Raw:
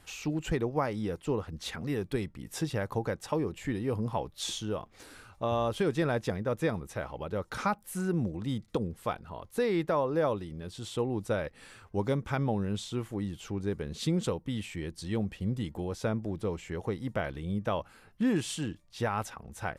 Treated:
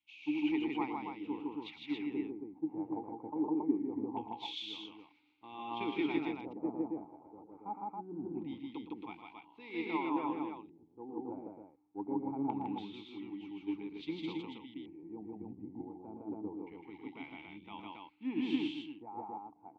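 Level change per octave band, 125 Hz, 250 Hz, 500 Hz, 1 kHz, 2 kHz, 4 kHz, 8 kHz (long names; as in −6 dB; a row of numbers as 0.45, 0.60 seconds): −20.5 dB, −3.5 dB, −12.5 dB, −5.5 dB, −8.5 dB, −6.0 dB, below −30 dB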